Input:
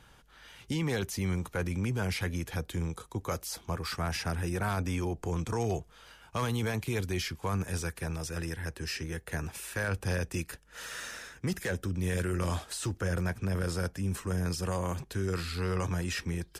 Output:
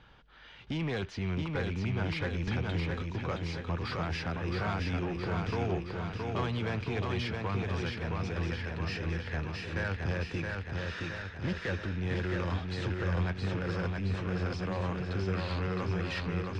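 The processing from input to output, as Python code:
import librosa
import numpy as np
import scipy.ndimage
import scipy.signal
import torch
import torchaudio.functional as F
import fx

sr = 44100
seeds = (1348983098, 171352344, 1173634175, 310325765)

y = fx.rattle_buzz(x, sr, strikes_db=-41.0, level_db=-40.0)
y = scipy.signal.sosfilt(scipy.signal.butter(4, 4200.0, 'lowpass', fs=sr, output='sos'), y)
y = 10.0 ** (-26.5 / 20.0) * np.tanh(y / 10.0 ** (-26.5 / 20.0))
y = fx.echo_feedback(y, sr, ms=669, feedback_pct=60, wet_db=-3.5)
y = fx.band_squash(y, sr, depth_pct=100, at=(2.47, 3.02))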